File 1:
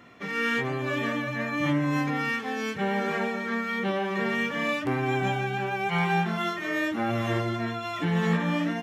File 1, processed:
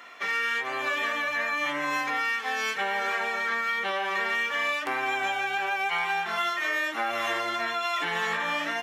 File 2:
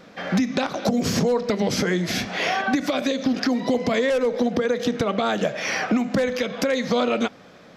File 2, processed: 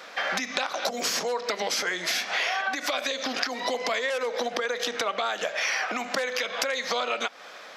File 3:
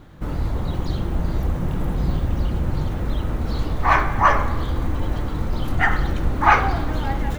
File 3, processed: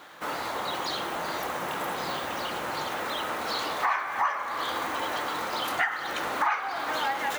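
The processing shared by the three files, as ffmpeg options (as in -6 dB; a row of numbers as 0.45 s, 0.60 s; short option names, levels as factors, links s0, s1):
-af "highpass=820,acompressor=threshold=0.0224:ratio=8,volume=2.66"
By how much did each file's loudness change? +0.5 LU, -4.5 LU, -7.0 LU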